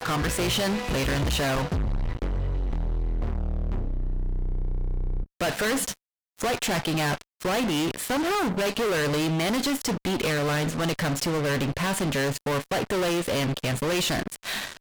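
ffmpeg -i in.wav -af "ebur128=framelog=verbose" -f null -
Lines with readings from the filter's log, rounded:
Integrated loudness:
  I:         -26.8 LUFS
  Threshold: -36.9 LUFS
Loudness range:
  LRA:         5.2 LU
  Threshold: -47.0 LUFS
  LRA low:   -30.6 LUFS
  LRA high:  -25.4 LUFS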